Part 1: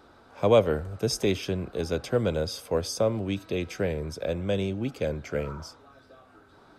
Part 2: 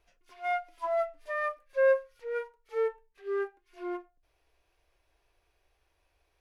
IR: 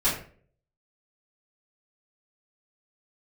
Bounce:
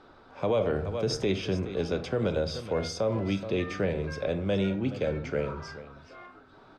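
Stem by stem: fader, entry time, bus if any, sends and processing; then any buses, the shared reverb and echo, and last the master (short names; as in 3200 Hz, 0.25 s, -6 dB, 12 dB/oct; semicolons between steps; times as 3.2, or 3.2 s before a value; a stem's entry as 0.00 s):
-0.5 dB, 0.00 s, send -20.5 dB, echo send -14.5 dB, dry
-2.5 dB, 2.30 s, send -16 dB, no echo send, HPF 1400 Hz; compressor, threshold -40 dBFS, peak gain reduction 9.5 dB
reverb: on, RT60 0.50 s, pre-delay 3 ms
echo: echo 0.424 s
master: LPF 4800 Hz 12 dB/oct; limiter -17.5 dBFS, peak gain reduction 9.5 dB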